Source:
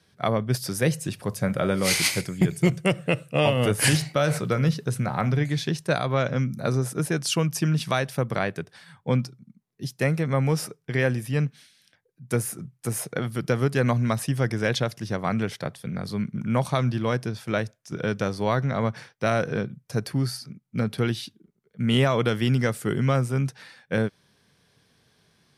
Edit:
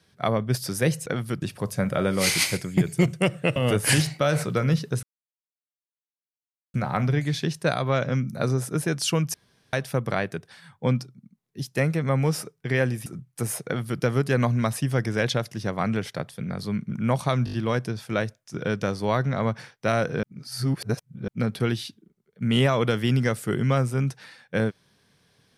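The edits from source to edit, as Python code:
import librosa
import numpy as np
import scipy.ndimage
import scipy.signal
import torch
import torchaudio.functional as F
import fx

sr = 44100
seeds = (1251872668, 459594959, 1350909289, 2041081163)

y = fx.edit(x, sr, fx.cut(start_s=3.2, length_s=0.31),
    fx.insert_silence(at_s=4.98, length_s=1.71),
    fx.room_tone_fill(start_s=7.58, length_s=0.39),
    fx.cut(start_s=11.3, length_s=1.22),
    fx.duplicate(start_s=13.12, length_s=0.36, to_s=1.06),
    fx.stutter(start_s=16.91, slice_s=0.02, count=5),
    fx.reverse_span(start_s=19.61, length_s=1.05), tone=tone)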